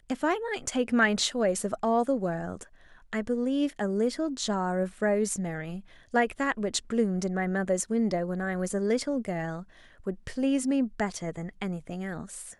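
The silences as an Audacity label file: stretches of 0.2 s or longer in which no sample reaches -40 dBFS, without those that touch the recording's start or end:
2.630000	3.130000	silence
5.800000	6.140000	silence
9.630000	10.070000	silence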